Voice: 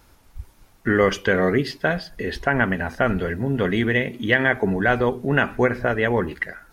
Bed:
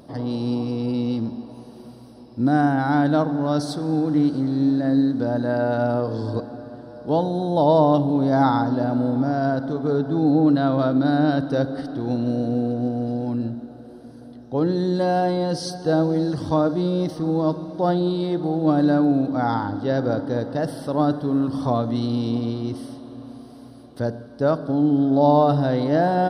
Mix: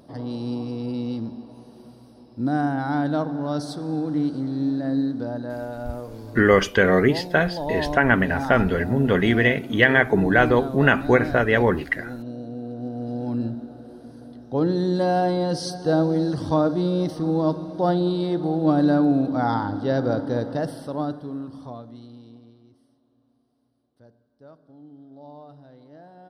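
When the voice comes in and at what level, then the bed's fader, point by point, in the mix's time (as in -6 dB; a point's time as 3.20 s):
5.50 s, +2.0 dB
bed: 5.12 s -4.5 dB
5.75 s -11.5 dB
12.57 s -11.5 dB
13.39 s -0.5 dB
20.50 s -0.5 dB
22.69 s -28 dB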